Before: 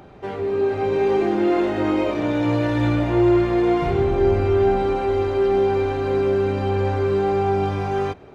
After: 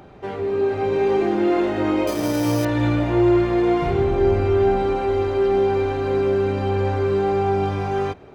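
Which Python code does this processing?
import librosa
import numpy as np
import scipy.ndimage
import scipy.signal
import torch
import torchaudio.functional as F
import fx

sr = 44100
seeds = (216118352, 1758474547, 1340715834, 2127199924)

y = fx.resample_bad(x, sr, factor=8, down='none', up='hold', at=(2.07, 2.65))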